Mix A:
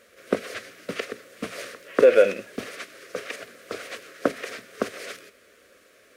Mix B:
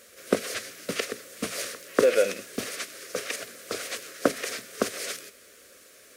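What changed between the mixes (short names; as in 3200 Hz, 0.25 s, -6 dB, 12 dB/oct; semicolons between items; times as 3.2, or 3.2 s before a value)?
speech -6.0 dB; master: add tone controls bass +1 dB, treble +11 dB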